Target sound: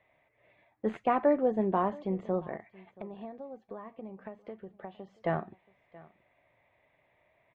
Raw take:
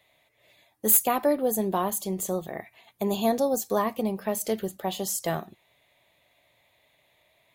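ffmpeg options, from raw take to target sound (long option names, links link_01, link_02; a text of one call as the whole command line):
ffmpeg -i in.wav -filter_complex "[0:a]lowpass=frequency=2200:width=0.5412,lowpass=frequency=2200:width=1.3066,asplit=3[link_01][link_02][link_03];[link_01]afade=type=out:start_time=2.55:duration=0.02[link_04];[link_02]acompressor=threshold=-39dB:ratio=10,afade=type=in:start_time=2.55:duration=0.02,afade=type=out:start_time=5.19:duration=0.02[link_05];[link_03]afade=type=in:start_time=5.19:duration=0.02[link_06];[link_04][link_05][link_06]amix=inputs=3:normalize=0,aecho=1:1:678:0.0794,volume=-1.5dB" out.wav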